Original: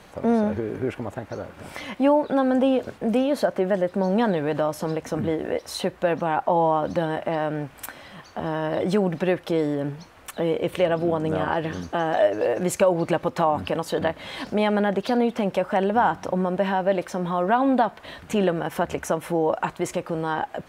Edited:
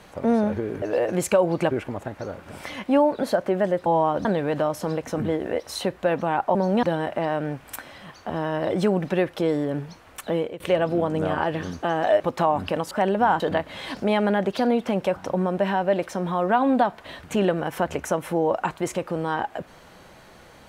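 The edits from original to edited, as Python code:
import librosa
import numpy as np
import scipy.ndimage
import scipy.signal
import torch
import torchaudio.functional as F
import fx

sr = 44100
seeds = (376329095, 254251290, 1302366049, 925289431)

y = fx.edit(x, sr, fx.cut(start_s=2.34, length_s=0.99),
    fx.swap(start_s=3.96, length_s=0.28, other_s=6.54, other_length_s=0.39),
    fx.fade_out_to(start_s=10.45, length_s=0.25, floor_db=-22.0),
    fx.move(start_s=12.3, length_s=0.89, to_s=0.82),
    fx.move(start_s=15.66, length_s=0.49, to_s=13.9), tone=tone)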